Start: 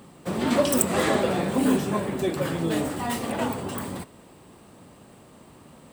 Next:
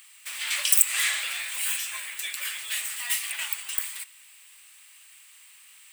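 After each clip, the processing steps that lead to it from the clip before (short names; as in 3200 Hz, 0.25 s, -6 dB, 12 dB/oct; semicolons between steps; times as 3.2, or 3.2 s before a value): Chebyshev high-pass 2300 Hz, order 3; bell 4100 Hz -6 dB 1.6 oct; maximiser +12.5 dB; gain -1 dB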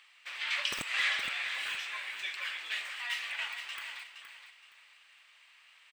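hard clip -11.5 dBFS, distortion -14 dB; air absorption 220 m; feedback echo 0.468 s, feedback 27%, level -9 dB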